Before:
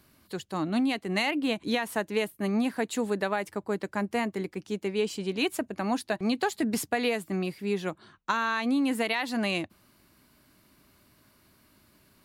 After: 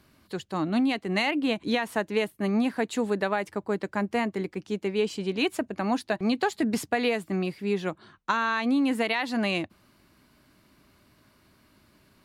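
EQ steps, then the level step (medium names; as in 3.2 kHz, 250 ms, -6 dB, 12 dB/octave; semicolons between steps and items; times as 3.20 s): treble shelf 8.8 kHz -11 dB; +2.0 dB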